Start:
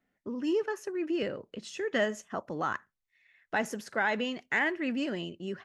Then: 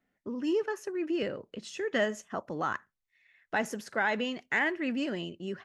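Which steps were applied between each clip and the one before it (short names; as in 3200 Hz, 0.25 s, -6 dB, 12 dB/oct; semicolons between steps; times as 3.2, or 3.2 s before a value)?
nothing audible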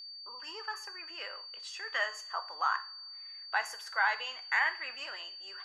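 ladder high-pass 880 Hz, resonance 50%; whine 4600 Hz -50 dBFS; two-slope reverb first 0.38 s, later 2.3 s, from -28 dB, DRR 8 dB; gain +6.5 dB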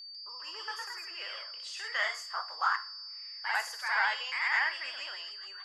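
low shelf 440 Hz -11 dB; echoes that change speed 0.147 s, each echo +1 st, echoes 2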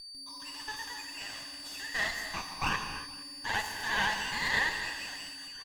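minimum comb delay 1.1 ms; echo 0.467 s -22 dB; non-linear reverb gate 0.33 s flat, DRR 6 dB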